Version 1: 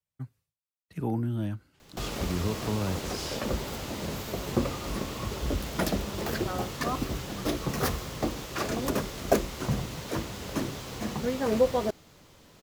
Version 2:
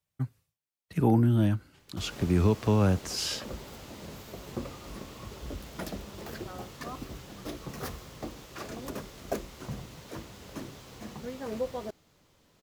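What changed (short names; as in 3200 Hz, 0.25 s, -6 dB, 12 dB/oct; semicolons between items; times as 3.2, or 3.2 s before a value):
speech +7.0 dB; background -9.5 dB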